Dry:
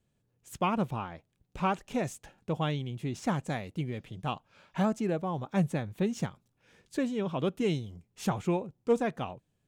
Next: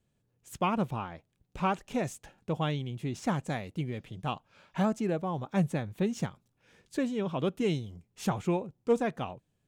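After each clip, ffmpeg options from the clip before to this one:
ffmpeg -i in.wav -af anull out.wav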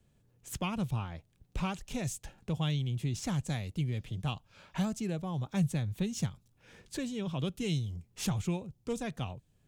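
ffmpeg -i in.wav -filter_complex "[0:a]lowshelf=frequency=86:gain=7.5,acrossover=split=140|3000[link_01][link_02][link_03];[link_02]acompressor=threshold=-53dB:ratio=2[link_04];[link_01][link_04][link_03]amix=inputs=3:normalize=0,volume=5dB" out.wav

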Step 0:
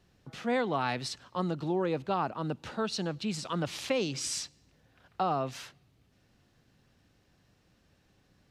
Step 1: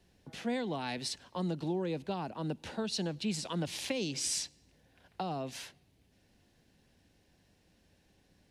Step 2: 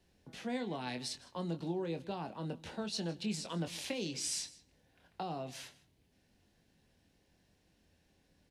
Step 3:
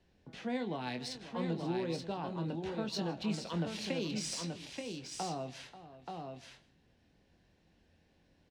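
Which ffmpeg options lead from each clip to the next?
ffmpeg -i in.wav -filter_complex "[0:a]equalizer=frequency=125:width_type=o:width=0.33:gain=-8,equalizer=frequency=1250:width_type=o:width=0.33:gain=-11,equalizer=frequency=10000:width_type=o:width=0.33:gain=6,acrossover=split=280|3000[link_01][link_02][link_03];[link_02]acompressor=threshold=-36dB:ratio=6[link_04];[link_01][link_04][link_03]amix=inputs=3:normalize=0" out.wav
ffmpeg -i in.wav -filter_complex "[0:a]asplit=2[link_01][link_02];[link_02]adelay=24,volume=-8dB[link_03];[link_01][link_03]amix=inputs=2:normalize=0,aecho=1:1:157:0.1,volume=-4dB" out.wav
ffmpeg -i in.wav -af "adynamicsmooth=sensitivity=4.5:basefreq=5600,aecho=1:1:537|880:0.178|0.562,volume=1.5dB" -ar 44100 -c:a aac -b:a 96k out.aac

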